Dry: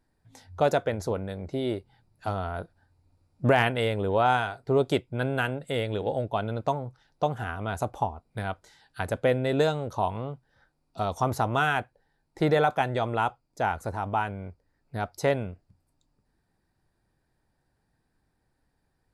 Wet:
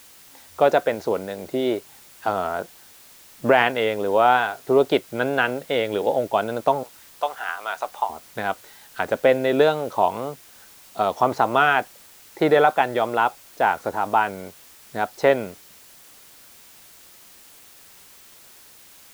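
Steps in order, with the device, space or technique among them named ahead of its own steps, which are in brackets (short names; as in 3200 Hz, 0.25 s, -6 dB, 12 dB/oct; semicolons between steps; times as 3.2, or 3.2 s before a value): 6.83–8.1 HPF 940 Hz 12 dB/oct; dictaphone (BPF 280–3700 Hz; AGC gain up to 8.5 dB; wow and flutter; white noise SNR 25 dB)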